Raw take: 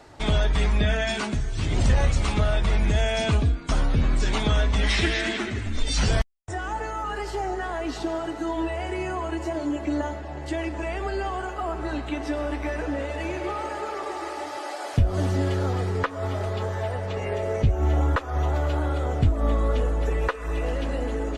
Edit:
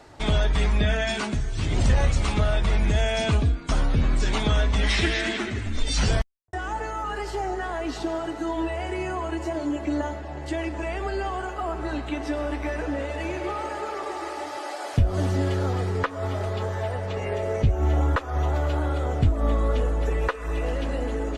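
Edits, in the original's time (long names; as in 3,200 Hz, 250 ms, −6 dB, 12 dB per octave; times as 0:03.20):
0:06.10–0:06.53: fade out and dull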